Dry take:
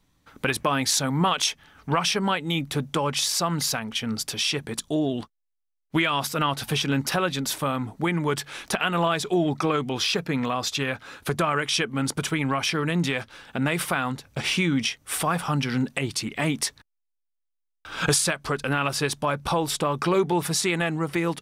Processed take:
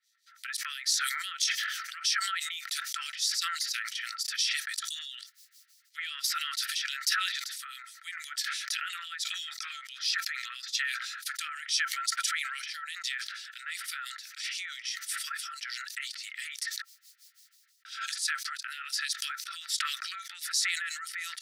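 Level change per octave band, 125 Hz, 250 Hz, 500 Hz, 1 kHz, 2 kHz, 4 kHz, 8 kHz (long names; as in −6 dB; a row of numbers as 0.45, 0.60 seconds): below −40 dB, below −40 dB, below −40 dB, −12.5 dB, −4.5 dB, −3.5 dB, −4.0 dB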